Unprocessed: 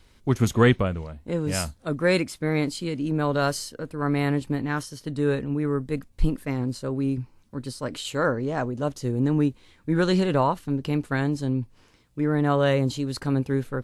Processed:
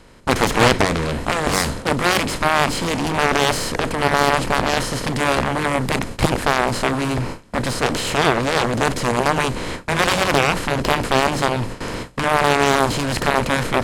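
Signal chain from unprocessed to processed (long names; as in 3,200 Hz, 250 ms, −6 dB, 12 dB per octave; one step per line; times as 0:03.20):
compressor on every frequency bin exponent 0.4
harmonic generator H 7 −9 dB, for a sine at −1.5 dBFS
noise gate with hold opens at −17 dBFS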